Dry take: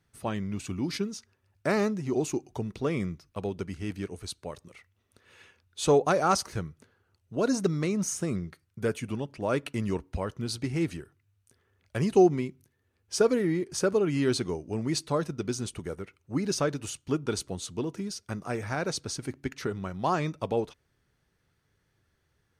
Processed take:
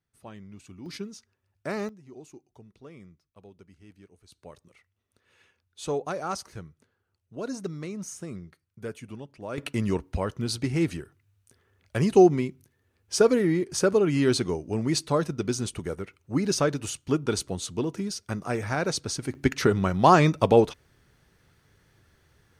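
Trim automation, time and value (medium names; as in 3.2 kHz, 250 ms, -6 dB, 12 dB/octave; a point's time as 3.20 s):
-12.5 dB
from 0.86 s -5.5 dB
from 1.89 s -18 dB
from 4.32 s -7.5 dB
from 9.58 s +3.5 dB
from 19.35 s +10.5 dB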